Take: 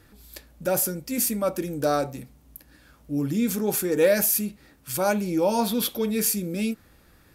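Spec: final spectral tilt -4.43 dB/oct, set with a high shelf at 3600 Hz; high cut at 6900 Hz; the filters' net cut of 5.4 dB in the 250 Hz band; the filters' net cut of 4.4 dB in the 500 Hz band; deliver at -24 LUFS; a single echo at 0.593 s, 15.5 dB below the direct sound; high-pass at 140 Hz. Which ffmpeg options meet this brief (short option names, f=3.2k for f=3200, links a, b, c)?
-af "highpass=140,lowpass=6.9k,equalizer=f=250:t=o:g=-5,equalizer=f=500:t=o:g=-4,highshelf=f=3.6k:g=-5,aecho=1:1:593:0.168,volume=6.5dB"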